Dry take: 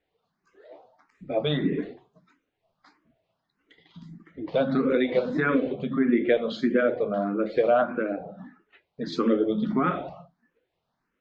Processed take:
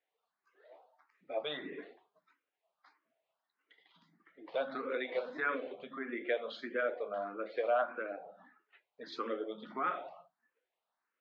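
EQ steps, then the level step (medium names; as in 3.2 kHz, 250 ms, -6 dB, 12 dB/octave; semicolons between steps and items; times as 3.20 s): high-pass 670 Hz 12 dB/octave; distance through air 140 m; -5.5 dB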